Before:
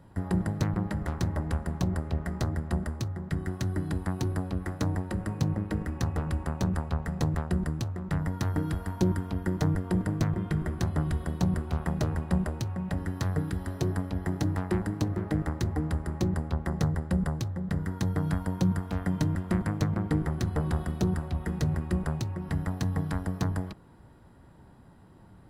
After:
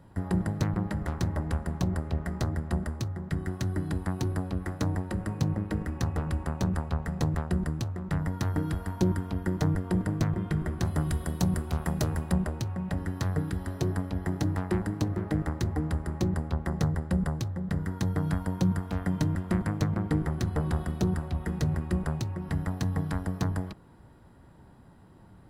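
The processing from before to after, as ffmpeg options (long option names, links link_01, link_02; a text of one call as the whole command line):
ffmpeg -i in.wav -filter_complex "[0:a]asplit=3[link_01][link_02][link_03];[link_01]afade=type=out:start_time=10.84:duration=0.02[link_04];[link_02]highshelf=frequency=5700:gain=11.5,afade=type=in:start_time=10.84:duration=0.02,afade=type=out:start_time=12.31:duration=0.02[link_05];[link_03]afade=type=in:start_time=12.31:duration=0.02[link_06];[link_04][link_05][link_06]amix=inputs=3:normalize=0" out.wav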